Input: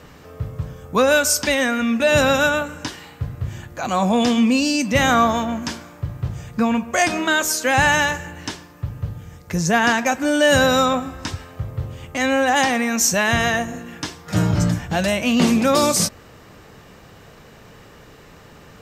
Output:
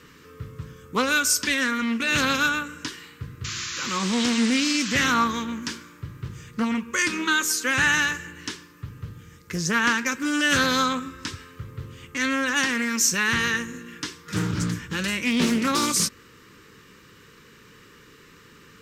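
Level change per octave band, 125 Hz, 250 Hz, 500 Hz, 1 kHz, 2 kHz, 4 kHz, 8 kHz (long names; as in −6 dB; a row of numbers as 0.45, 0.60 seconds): −8.5, −5.5, −13.0, −7.0, −2.5, −2.0, −2.5 decibels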